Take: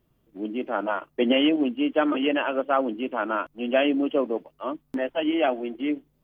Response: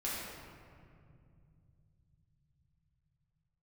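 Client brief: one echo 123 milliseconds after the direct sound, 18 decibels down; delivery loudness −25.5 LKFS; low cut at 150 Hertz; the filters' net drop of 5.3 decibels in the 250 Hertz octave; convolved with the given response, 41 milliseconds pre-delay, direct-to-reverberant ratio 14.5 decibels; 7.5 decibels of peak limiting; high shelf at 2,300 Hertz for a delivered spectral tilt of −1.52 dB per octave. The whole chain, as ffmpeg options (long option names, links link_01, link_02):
-filter_complex "[0:a]highpass=150,equalizer=frequency=250:width_type=o:gain=-6,highshelf=frequency=2300:gain=-5.5,alimiter=limit=-18.5dB:level=0:latency=1,aecho=1:1:123:0.126,asplit=2[link_01][link_02];[1:a]atrim=start_sample=2205,adelay=41[link_03];[link_02][link_03]afir=irnorm=-1:irlink=0,volume=-18.5dB[link_04];[link_01][link_04]amix=inputs=2:normalize=0,volume=4.5dB"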